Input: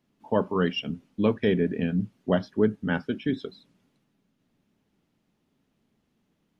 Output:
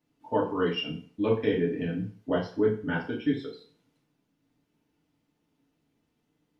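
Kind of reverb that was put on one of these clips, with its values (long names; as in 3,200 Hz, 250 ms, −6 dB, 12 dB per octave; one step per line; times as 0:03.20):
feedback delay network reverb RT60 0.44 s, low-frequency decay 0.8×, high-frequency decay 0.9×, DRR −4.5 dB
level −7.5 dB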